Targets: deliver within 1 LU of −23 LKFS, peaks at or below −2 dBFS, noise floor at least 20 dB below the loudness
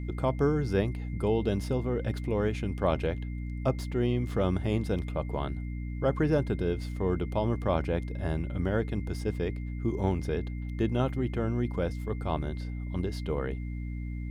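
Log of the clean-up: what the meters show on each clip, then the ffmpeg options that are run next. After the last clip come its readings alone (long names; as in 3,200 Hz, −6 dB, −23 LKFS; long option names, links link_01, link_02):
mains hum 60 Hz; hum harmonics up to 300 Hz; level of the hum −32 dBFS; interfering tone 2,100 Hz; level of the tone −53 dBFS; integrated loudness −31.0 LKFS; sample peak −12.5 dBFS; target loudness −23.0 LKFS
→ -af "bandreject=frequency=60:width_type=h:width=6,bandreject=frequency=120:width_type=h:width=6,bandreject=frequency=180:width_type=h:width=6,bandreject=frequency=240:width_type=h:width=6,bandreject=frequency=300:width_type=h:width=6"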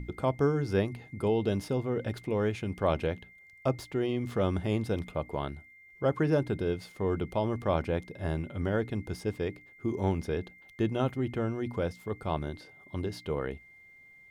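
mains hum none found; interfering tone 2,100 Hz; level of the tone −53 dBFS
→ -af "bandreject=frequency=2100:width=30"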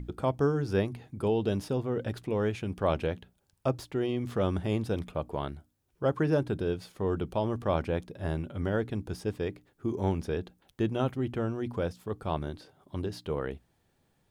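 interfering tone none found; integrated loudness −32.0 LKFS; sample peak −14.0 dBFS; target loudness −23.0 LKFS
→ -af "volume=9dB"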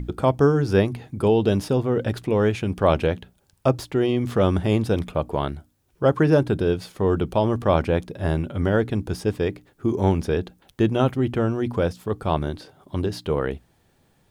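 integrated loudness −23.0 LKFS; sample peak −5.0 dBFS; background noise floor −63 dBFS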